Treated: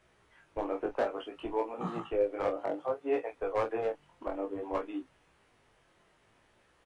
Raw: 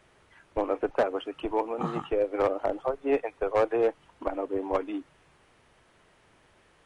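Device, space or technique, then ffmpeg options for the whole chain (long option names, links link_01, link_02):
double-tracked vocal: -filter_complex "[0:a]asettb=1/sr,asplit=3[link_01][link_02][link_03];[link_01]atrim=end=2.564[link_04];[link_02]atrim=start=2.56:end=3.27,asetpts=PTS-STARTPTS,afade=type=in:duration=0.004:curve=qsin,afade=type=out:start_time=0.706:duration=0.004:curve=qsin,highpass=frequency=100:width=0.5412,highpass=frequency=100:width=1.3066[link_05];[link_03]atrim=start=3.266[link_06];[link_04][link_05]acrossfade=duration=0.004:curve1=hsin:curve2=qsin[link_07];[link_07][link_06]acrossfade=duration=0.004:curve1=qsin:curve2=hsin,asplit=2[link_08][link_09];[link_09]adelay=27,volume=-7.5dB[link_10];[link_08][link_10]amix=inputs=2:normalize=0,flanger=delay=16:depth=5.3:speed=0.59,volume=-3dB"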